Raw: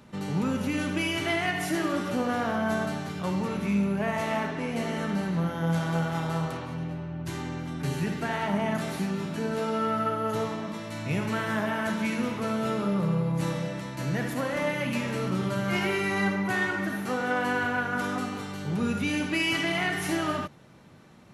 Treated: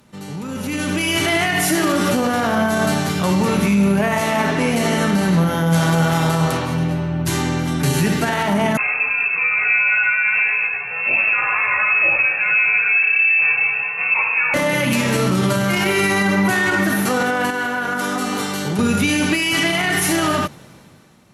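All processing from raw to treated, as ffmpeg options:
-filter_complex "[0:a]asettb=1/sr,asplit=3[a][b][c];[a]atrim=end=8.774[d];[b]atrim=start=8.77:end=14.54,asetpts=PTS-STARTPTS,afade=t=in:d=0.004:c=qsin,afade=t=out:st=5.766:d=0.004:c=qsin,bandreject=f=800:w=7.5,flanger=delay=16:depth=2.5:speed=1.4,lowpass=f=2.4k:t=q:w=0.5098,lowpass=f=2.4k:t=q:w=0.6013,lowpass=f=2.4k:t=q:w=0.9,lowpass=f=2.4k:t=q:w=2.563,afreqshift=-2800[e];[c]atrim=start=14.536[f];[d][e]acrossfade=d=0.004:c1=hsin:c2=qsin[g];[g][f]acrossfade=d=0.004:c1=qsin:c2=hsin,asettb=1/sr,asplit=3[h][i][j];[h]atrim=end=17.504[k];[i]atrim=start=17.5:end=18.79,asetpts=PTS-STARTPTS,afade=t=in:d=0.004:c=qsin,afade=t=out:st=1.286:d=0.004:c=qsin,highpass=190,bandreject=f=2.5k:w=17,acompressor=threshold=-31dB:ratio=10:attack=3.2:release=140:knee=1:detection=peak[l];[j]atrim=start=18.786[m];[k][l]acrossfade=d=0.004:c1=hsin:c2=qsin[n];[n][m]acrossfade=d=0.004:c1=qsin:c2=hsin,aemphasis=mode=production:type=cd,alimiter=limit=-22.5dB:level=0:latency=1:release=39,dynaudnorm=f=130:g=13:m=14dB"

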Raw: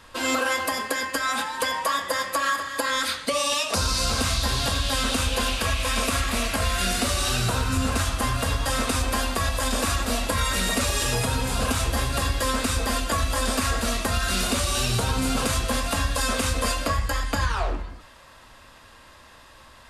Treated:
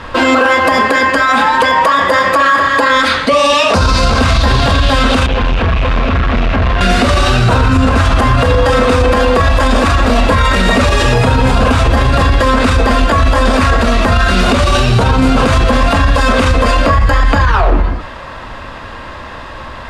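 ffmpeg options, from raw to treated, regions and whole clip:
-filter_complex "[0:a]asettb=1/sr,asplit=3[a][b][c];[a]atrim=end=5.264[d];[b]atrim=start=5.26:end=6.81,asetpts=PTS-STARTPTS,afade=t=in:d=0.004:c=qsin,afade=t=out:st=1.546:d=0.004:c=qsin,lowpass=f=3.7k:w=0.5412,lowpass=f=3.7k:w=1.3066,acrossover=split=180|1000[e][f][g];[e]acompressor=threshold=-26dB:ratio=4[h];[f]acompressor=threshold=-37dB:ratio=4[i];[g]acompressor=threshold=-37dB:ratio=4[j];[h][i][j]amix=inputs=3:normalize=0,volume=32.5dB,asoftclip=hard,volume=-32.5dB[k];[c]atrim=start=6.806[l];[d][k]acrossfade=d=0.004:c1=hsin:c2=qsin[m];[m][l]acrossfade=d=0.004:c1=qsin:c2=hsin,asettb=1/sr,asplit=3[n][o][p];[n]atrim=end=8.434[q];[o]atrim=start=8.43:end=9.4,asetpts=PTS-STARTPTS,afade=t=in:d=0.004:c=qsin,afade=t=out:st=0.966:d=0.004:c=qsin,highpass=42,aeval=exprs='val(0)+0.0447*sin(2*PI*500*n/s)':c=same[r];[p]atrim=start=9.396[s];[q][r]acrossfade=d=0.004:c1=hsin:c2=qsin[t];[t][s]acrossfade=d=0.004:c1=qsin:c2=hsin,lowpass=f=2.7k:p=1,aemphasis=mode=reproduction:type=50kf,alimiter=level_in=24.5dB:limit=-1dB:release=50:level=0:latency=1,volume=-1dB"

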